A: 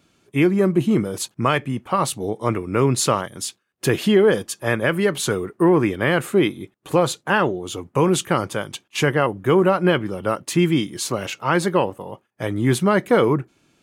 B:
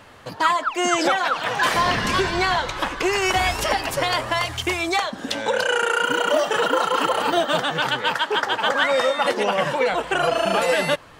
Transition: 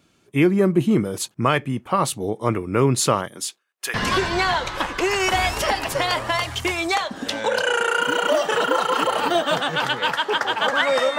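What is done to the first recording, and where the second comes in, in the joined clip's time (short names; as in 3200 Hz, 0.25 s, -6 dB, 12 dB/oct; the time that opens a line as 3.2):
A
3.28–3.94 HPF 170 Hz -> 1400 Hz
3.94 switch to B from 1.96 s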